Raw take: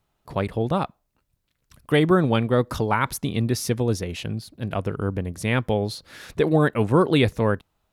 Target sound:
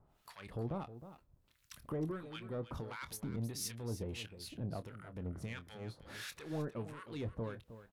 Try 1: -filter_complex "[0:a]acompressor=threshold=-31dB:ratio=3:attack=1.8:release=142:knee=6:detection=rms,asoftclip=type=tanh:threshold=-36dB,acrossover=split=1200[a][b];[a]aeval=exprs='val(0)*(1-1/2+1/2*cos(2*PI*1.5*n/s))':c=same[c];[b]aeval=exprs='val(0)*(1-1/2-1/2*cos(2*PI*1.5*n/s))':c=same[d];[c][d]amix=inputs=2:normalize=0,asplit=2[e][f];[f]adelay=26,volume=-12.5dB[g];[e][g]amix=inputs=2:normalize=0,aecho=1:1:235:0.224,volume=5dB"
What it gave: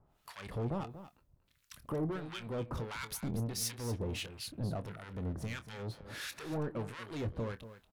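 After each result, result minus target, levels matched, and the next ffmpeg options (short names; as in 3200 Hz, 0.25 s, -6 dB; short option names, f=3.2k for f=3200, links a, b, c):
compressor: peak gain reduction -7.5 dB; echo 78 ms early
-filter_complex "[0:a]acompressor=threshold=-42.5dB:ratio=3:attack=1.8:release=142:knee=6:detection=rms,asoftclip=type=tanh:threshold=-36dB,acrossover=split=1200[a][b];[a]aeval=exprs='val(0)*(1-1/2+1/2*cos(2*PI*1.5*n/s))':c=same[c];[b]aeval=exprs='val(0)*(1-1/2-1/2*cos(2*PI*1.5*n/s))':c=same[d];[c][d]amix=inputs=2:normalize=0,asplit=2[e][f];[f]adelay=26,volume=-12.5dB[g];[e][g]amix=inputs=2:normalize=0,aecho=1:1:235:0.224,volume=5dB"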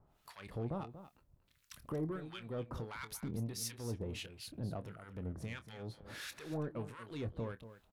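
echo 78 ms early
-filter_complex "[0:a]acompressor=threshold=-42.5dB:ratio=3:attack=1.8:release=142:knee=6:detection=rms,asoftclip=type=tanh:threshold=-36dB,acrossover=split=1200[a][b];[a]aeval=exprs='val(0)*(1-1/2+1/2*cos(2*PI*1.5*n/s))':c=same[c];[b]aeval=exprs='val(0)*(1-1/2-1/2*cos(2*PI*1.5*n/s))':c=same[d];[c][d]amix=inputs=2:normalize=0,asplit=2[e][f];[f]adelay=26,volume=-12.5dB[g];[e][g]amix=inputs=2:normalize=0,aecho=1:1:313:0.224,volume=5dB"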